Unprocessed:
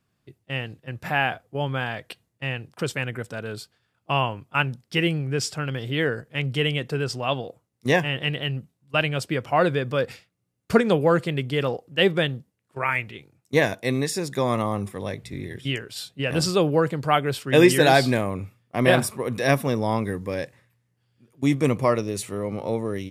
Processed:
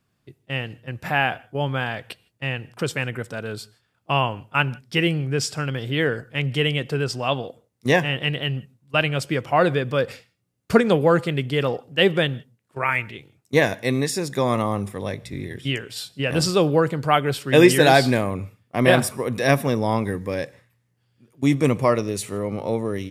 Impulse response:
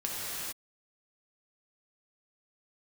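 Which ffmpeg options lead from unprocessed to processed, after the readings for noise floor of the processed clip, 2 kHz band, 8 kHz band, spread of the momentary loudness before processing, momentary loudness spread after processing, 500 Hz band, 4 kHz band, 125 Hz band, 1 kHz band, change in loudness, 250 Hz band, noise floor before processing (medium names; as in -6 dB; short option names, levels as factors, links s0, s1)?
-70 dBFS, +2.0 dB, +2.0 dB, 12 LU, 13 LU, +2.0 dB, +2.0 dB, +2.0 dB, +2.0 dB, +2.0 dB, +2.0 dB, -74 dBFS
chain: -filter_complex "[0:a]asplit=2[s0][s1];[1:a]atrim=start_sample=2205,afade=t=out:st=0.22:d=0.01,atrim=end_sample=10143[s2];[s1][s2]afir=irnorm=-1:irlink=0,volume=0.0668[s3];[s0][s3]amix=inputs=2:normalize=0,volume=1.19"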